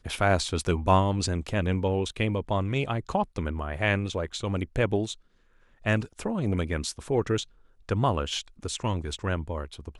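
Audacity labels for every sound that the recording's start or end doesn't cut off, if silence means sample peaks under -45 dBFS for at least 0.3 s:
5.830000	7.440000	sound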